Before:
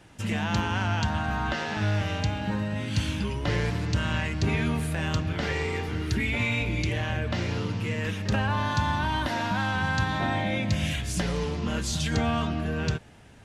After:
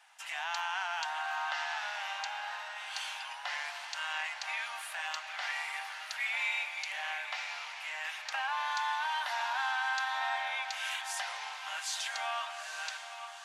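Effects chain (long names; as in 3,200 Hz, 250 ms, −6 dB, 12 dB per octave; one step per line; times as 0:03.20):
elliptic high-pass filter 750 Hz, stop band 50 dB
feedback delay with all-pass diffusion 868 ms, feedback 49%, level −9 dB
level −3.5 dB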